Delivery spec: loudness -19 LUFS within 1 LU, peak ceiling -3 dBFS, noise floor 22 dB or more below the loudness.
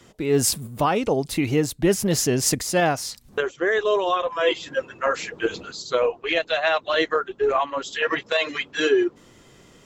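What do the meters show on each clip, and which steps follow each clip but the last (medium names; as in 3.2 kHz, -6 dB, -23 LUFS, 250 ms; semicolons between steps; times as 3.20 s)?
loudness -23.0 LUFS; peak level -8.5 dBFS; loudness target -19.0 LUFS
-> trim +4 dB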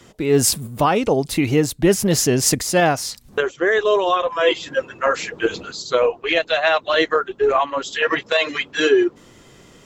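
loudness -19.0 LUFS; peak level -4.5 dBFS; noise floor -48 dBFS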